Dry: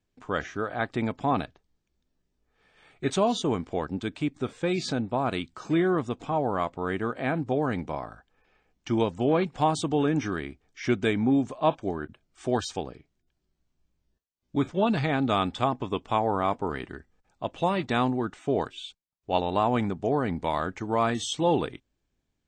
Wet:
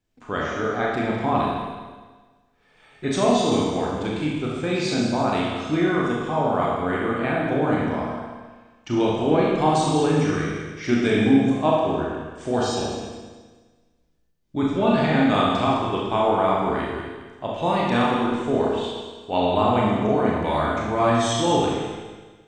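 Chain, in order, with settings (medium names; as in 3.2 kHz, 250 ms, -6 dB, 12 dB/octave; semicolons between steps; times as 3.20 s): backward echo that repeats 105 ms, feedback 59%, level -8 dB; Schroeder reverb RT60 1.1 s, combs from 26 ms, DRR -3.5 dB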